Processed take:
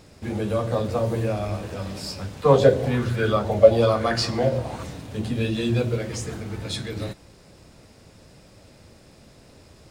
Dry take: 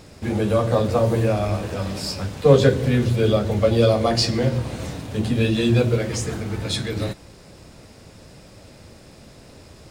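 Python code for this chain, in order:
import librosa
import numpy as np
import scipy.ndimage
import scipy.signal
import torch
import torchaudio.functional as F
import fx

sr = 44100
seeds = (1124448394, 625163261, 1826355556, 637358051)

y = fx.bell_lfo(x, sr, hz=1.1, low_hz=600.0, high_hz=1600.0, db=14, at=(2.42, 4.82), fade=0.02)
y = y * librosa.db_to_amplitude(-5.0)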